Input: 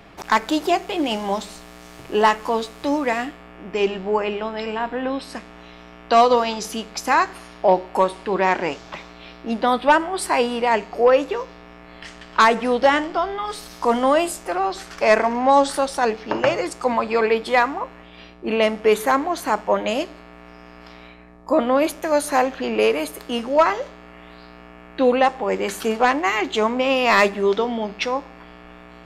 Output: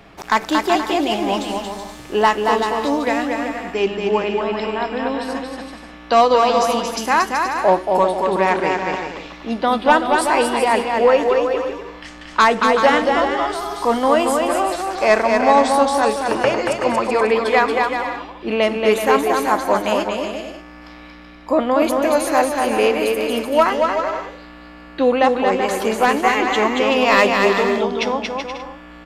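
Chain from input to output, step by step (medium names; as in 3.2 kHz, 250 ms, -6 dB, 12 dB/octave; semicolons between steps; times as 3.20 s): bouncing-ball echo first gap 230 ms, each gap 0.65×, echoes 5; trim +1 dB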